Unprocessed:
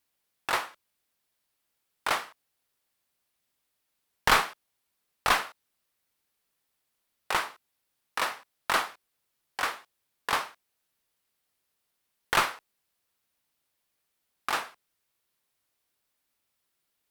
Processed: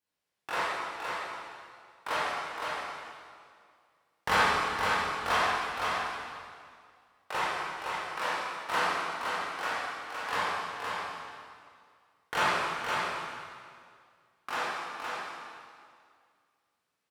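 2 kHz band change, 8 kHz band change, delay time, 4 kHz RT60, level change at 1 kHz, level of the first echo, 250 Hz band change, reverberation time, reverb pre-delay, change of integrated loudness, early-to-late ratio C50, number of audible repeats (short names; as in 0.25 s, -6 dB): +1.0 dB, -4.5 dB, 0.514 s, 1.9 s, +1.5 dB, -4.5 dB, +2.5 dB, 2.1 s, 18 ms, -2.5 dB, -6.0 dB, 1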